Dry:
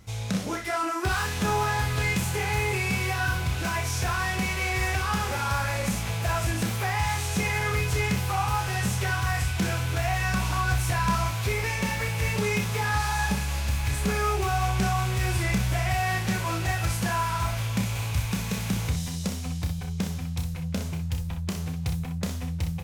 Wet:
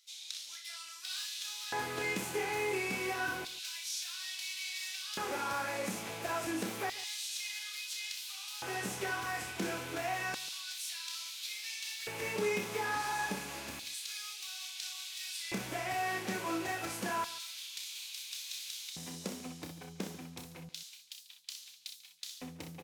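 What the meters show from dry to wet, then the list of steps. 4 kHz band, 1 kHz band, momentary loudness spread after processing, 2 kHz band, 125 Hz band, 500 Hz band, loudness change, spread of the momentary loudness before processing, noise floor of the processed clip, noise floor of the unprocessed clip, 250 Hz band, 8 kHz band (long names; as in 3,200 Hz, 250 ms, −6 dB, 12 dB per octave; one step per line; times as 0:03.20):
−4.5 dB, −11.0 dB, 11 LU, −10.0 dB, −25.0 dB, −7.0 dB, −10.5 dB, 6 LU, −52 dBFS, −32 dBFS, −12.5 dB, −6.5 dB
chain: auto-filter high-pass square 0.29 Hz 310–3,800 Hz
on a send: single-tap delay 142 ms −17 dB
on the sum: level −8 dB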